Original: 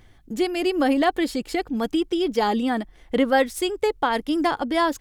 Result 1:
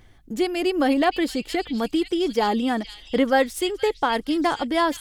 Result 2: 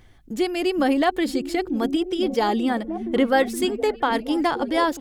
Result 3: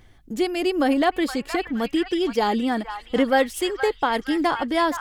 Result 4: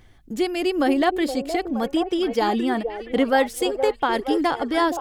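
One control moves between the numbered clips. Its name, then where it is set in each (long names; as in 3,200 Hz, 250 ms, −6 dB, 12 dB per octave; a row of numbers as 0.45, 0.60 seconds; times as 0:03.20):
echo through a band-pass that steps, band-pass from: 3,400, 170, 1,300, 490 Hertz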